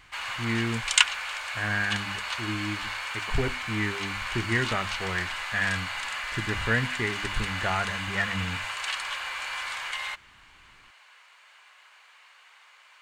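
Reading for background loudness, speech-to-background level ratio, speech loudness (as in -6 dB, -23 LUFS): -30.5 LUFS, -0.5 dB, -31.0 LUFS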